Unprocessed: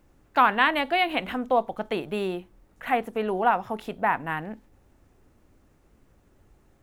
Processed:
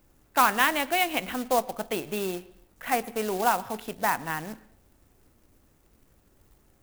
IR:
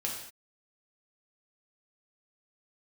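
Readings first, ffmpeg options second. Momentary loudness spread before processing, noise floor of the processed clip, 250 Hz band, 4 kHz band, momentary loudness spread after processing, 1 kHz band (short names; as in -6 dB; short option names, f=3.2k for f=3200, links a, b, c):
13 LU, -64 dBFS, -2.5 dB, 0.0 dB, 13 LU, -2.0 dB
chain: -filter_complex "[0:a]acrusher=bits=3:mode=log:mix=0:aa=0.000001,crystalizer=i=1:c=0,asplit=2[a][b];[1:a]atrim=start_sample=2205,lowpass=4.3k,adelay=110[c];[b][c]afir=irnorm=-1:irlink=0,volume=-23.5dB[d];[a][d]amix=inputs=2:normalize=0,volume=-2.5dB"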